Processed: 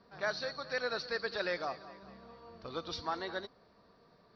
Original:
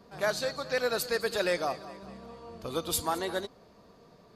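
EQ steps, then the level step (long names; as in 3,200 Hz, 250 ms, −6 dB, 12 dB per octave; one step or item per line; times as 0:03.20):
Chebyshev low-pass with heavy ripple 5,800 Hz, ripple 6 dB
−2.5 dB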